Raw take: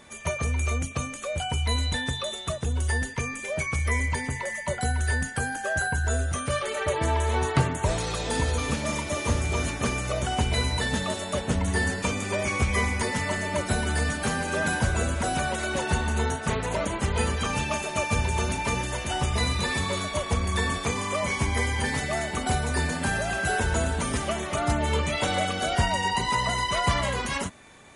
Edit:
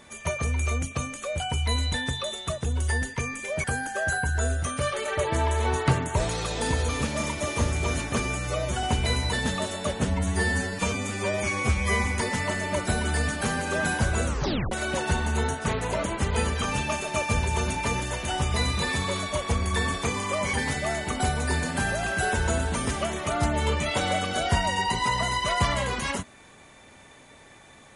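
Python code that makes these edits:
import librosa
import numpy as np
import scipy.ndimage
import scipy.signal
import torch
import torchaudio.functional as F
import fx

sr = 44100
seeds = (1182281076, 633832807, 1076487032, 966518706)

y = fx.edit(x, sr, fx.cut(start_s=3.64, length_s=1.69),
    fx.stretch_span(start_s=9.89, length_s=0.42, factor=1.5),
    fx.stretch_span(start_s=11.53, length_s=1.33, factor=1.5),
    fx.tape_stop(start_s=15.08, length_s=0.45),
    fx.cut(start_s=21.35, length_s=0.45), tone=tone)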